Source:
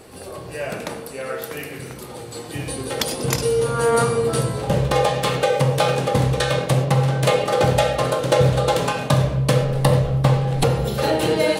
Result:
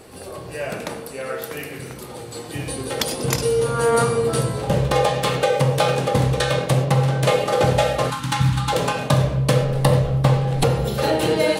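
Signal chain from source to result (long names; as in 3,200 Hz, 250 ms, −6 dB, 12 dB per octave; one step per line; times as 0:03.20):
0:07.25–0:08.20: variable-slope delta modulation 64 kbit/s
0:08.10–0:08.73: gain on a spectral selection 320–800 Hz −26 dB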